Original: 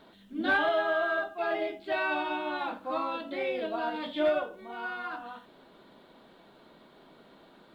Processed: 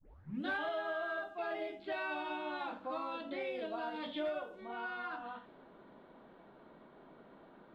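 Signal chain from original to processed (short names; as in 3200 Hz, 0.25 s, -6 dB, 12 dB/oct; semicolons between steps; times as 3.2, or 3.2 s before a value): tape start at the beginning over 0.46 s; low-pass opened by the level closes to 1600 Hz, open at -27 dBFS; compressor 2.5:1, threshold -38 dBFS, peak gain reduction 10.5 dB; gain -1.5 dB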